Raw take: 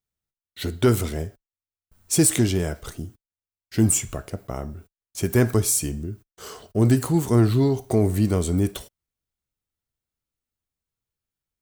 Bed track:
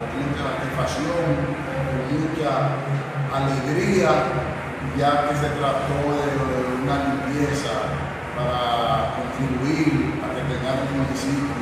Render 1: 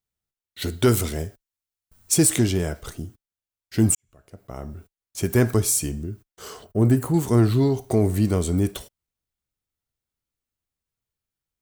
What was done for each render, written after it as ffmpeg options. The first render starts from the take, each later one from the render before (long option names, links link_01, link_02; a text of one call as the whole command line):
ffmpeg -i in.wav -filter_complex "[0:a]asettb=1/sr,asplit=3[link_01][link_02][link_03];[link_01]atrim=end=0.624[link_04];[link_02]atrim=start=0.62:end=2.14,asetpts=PTS-STARTPTS,afade=type=in:duration=0.004:curve=qsin,afade=type=out:start_time=1.516:duration=0.004:curve=qsin,highshelf=frequency=3300:gain=5.5[link_05];[link_03]atrim=start=2.136[link_06];[link_04][link_05]acrossfade=duration=0.004:curve1=hsin:curve2=qsin[link_07];[link_07][link_06]acrossfade=duration=0.004:curve1=qsin:curve2=hsin,asettb=1/sr,asplit=3[link_08][link_09][link_10];[link_08]atrim=end=6.644[link_11];[link_09]atrim=start=6.64:end=7.14,asetpts=PTS-STARTPTS,afade=type=in:duration=0.004:curve=qsin,afade=type=out:start_time=0.496:duration=0.004:curve=qsin,equalizer=frequency=4600:width=0.67:gain=-10.5[link_12];[link_10]atrim=start=7.136[link_13];[link_11][link_12]acrossfade=duration=0.004:curve1=hsin:curve2=qsin[link_14];[link_14][link_13]acrossfade=duration=0.004:curve1=qsin:curve2=hsin,asplit=2[link_15][link_16];[link_15]atrim=end=3.95,asetpts=PTS-STARTPTS,afade=type=out:start_time=3.946:duration=0.004:curve=hsin[link_17];[link_16]atrim=start=3.95,asetpts=PTS-STARTPTS,afade=type=in:duration=0.8:curve=qua[link_18];[link_17][link_18]concat=n=2:v=0:a=1" out.wav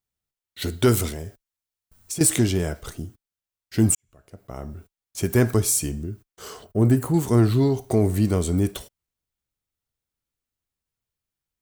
ffmpeg -i in.wav -filter_complex "[0:a]asettb=1/sr,asplit=3[link_01][link_02][link_03];[link_01]atrim=end=1.094[link_04];[link_02]atrim=start=1.09:end=2.21,asetpts=PTS-STARTPTS,afade=type=in:duration=0.004:curve=qsin,afade=type=out:start_time=1.116:duration=0.004:curve=qsin,acompressor=threshold=-28dB:ratio=5:attack=3.2:release=140:knee=1:detection=peak[link_05];[link_03]atrim=start=2.206[link_06];[link_04][link_05]acrossfade=duration=0.004:curve1=hsin:curve2=qsin[link_07];[link_07][link_06]acrossfade=duration=0.004:curve1=qsin:curve2=hsin" out.wav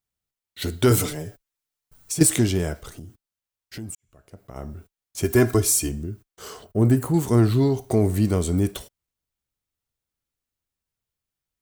ffmpeg -i in.wav -filter_complex "[0:a]asettb=1/sr,asplit=3[link_01][link_02][link_03];[link_01]atrim=end=0.904[link_04];[link_02]atrim=start=0.9:end=2.23,asetpts=PTS-STARTPTS,afade=type=in:duration=0.004:curve=qsin,afade=type=out:start_time=1.326:duration=0.004:curve=qsin,aecho=1:1:6.8:0.9,atrim=end_sample=58653[link_05];[link_03]atrim=start=2.226[link_06];[link_04][link_05]acrossfade=duration=0.004:curve1=hsin:curve2=qsin[link_07];[link_07][link_06]acrossfade=duration=0.004:curve1=qsin:curve2=hsin,asettb=1/sr,asplit=3[link_08][link_09][link_10];[link_08]atrim=end=2.804[link_11];[link_09]atrim=start=2.8:end=4.56,asetpts=PTS-STARTPTS,afade=type=in:duration=0.004:curve=qsin,afade=type=out:start_time=1.756:duration=0.004:curve=qsin,acompressor=threshold=-35dB:ratio=4:attack=3.2:release=140:knee=1:detection=peak[link_12];[link_10]atrim=start=4.556[link_13];[link_11][link_12]acrossfade=duration=0.004:curve1=hsin:curve2=qsin[link_14];[link_14][link_13]acrossfade=duration=0.004:curve1=qsin:curve2=hsin,asettb=1/sr,asplit=3[link_15][link_16][link_17];[link_15]atrim=end=5.244[link_18];[link_16]atrim=start=5.24:end=5.89,asetpts=PTS-STARTPTS,afade=type=in:duration=0.004:curve=qsin,afade=type=out:start_time=0.646:duration=0.004:curve=qsin,aecho=1:1:2.9:0.65,atrim=end_sample=28665[link_19];[link_17]atrim=start=5.886[link_20];[link_18][link_19]acrossfade=duration=0.004:curve1=hsin:curve2=qsin[link_21];[link_21][link_20]acrossfade=duration=0.004:curve1=qsin:curve2=hsin" out.wav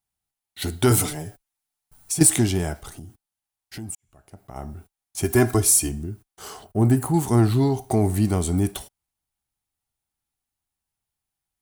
ffmpeg -i in.wav -af "equalizer=frequency=500:width_type=o:width=0.33:gain=-8,equalizer=frequency=800:width_type=o:width=0.33:gain=9,equalizer=frequency=10000:width_type=o:width=0.33:gain=7" out.wav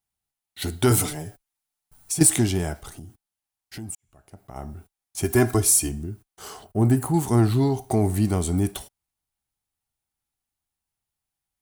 ffmpeg -i in.wav -af "volume=-1dB" out.wav